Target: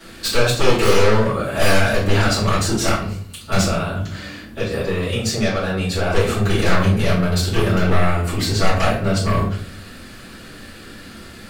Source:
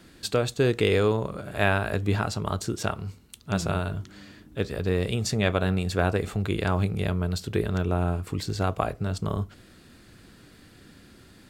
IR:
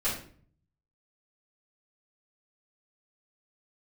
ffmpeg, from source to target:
-filter_complex "[0:a]lowshelf=frequency=310:gain=-9.5,asettb=1/sr,asplit=3[link_01][link_02][link_03];[link_01]atrim=end=3.664[link_04];[link_02]atrim=start=3.66:end=6.1,asetpts=PTS-STARTPTS,afade=type=in:duration=0.004:curve=qsin,afade=type=out:start_time=2.436:duration=0.004:curve=qsin,acompressor=threshold=-38dB:ratio=2[link_05];[link_03]atrim=start=6.096[link_06];[link_04][link_05]acrossfade=duration=0.004:curve1=hsin:curve2=qsin[link_07];[link_07][link_06]acrossfade=duration=0.004:curve1=qsin:curve2=hsin,aeval=exprs='0.473*sin(PI/2*7.94*val(0)/0.473)':channel_layout=same[link_08];[1:a]atrim=start_sample=2205[link_09];[link_08][link_09]afir=irnorm=-1:irlink=0,volume=-13.5dB"

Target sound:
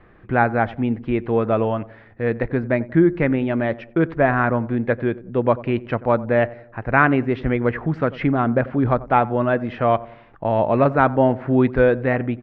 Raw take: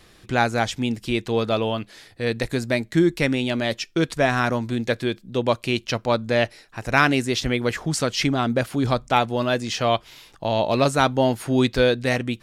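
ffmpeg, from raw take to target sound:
ffmpeg -i in.wav -filter_complex "[0:a]lowpass=frequency=1900:width=0.5412,lowpass=frequency=1900:width=1.3066,asplit=2[link_01][link_02];[link_02]adelay=91,lowpass=frequency=920:poles=1,volume=-17dB,asplit=2[link_03][link_04];[link_04]adelay=91,lowpass=frequency=920:poles=1,volume=0.51,asplit=2[link_05][link_06];[link_06]adelay=91,lowpass=frequency=920:poles=1,volume=0.51,asplit=2[link_07][link_08];[link_08]adelay=91,lowpass=frequency=920:poles=1,volume=0.51[link_09];[link_01][link_03][link_05][link_07][link_09]amix=inputs=5:normalize=0,volume=3dB" out.wav

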